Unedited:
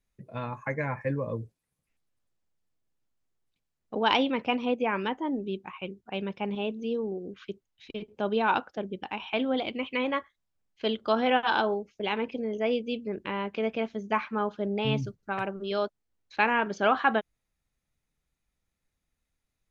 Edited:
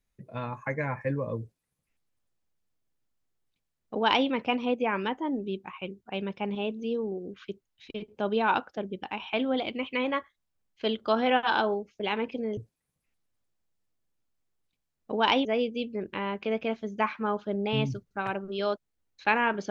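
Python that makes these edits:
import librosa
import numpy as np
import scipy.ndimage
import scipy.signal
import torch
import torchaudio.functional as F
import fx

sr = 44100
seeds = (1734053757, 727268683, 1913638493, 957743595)

y = fx.edit(x, sr, fx.duplicate(start_s=1.4, length_s=2.88, to_s=12.57), tone=tone)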